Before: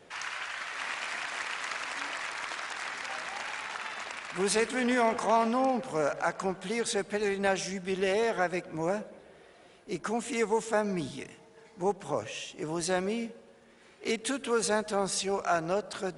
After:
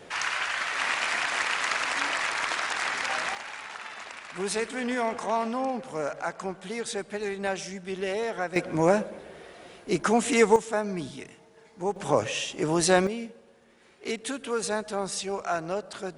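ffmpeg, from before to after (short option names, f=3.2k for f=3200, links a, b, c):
-af "asetnsamples=n=441:p=0,asendcmd='3.35 volume volume -2dB;8.56 volume volume 9dB;10.56 volume volume 0dB;11.96 volume volume 8.5dB;13.07 volume volume -1dB',volume=8dB"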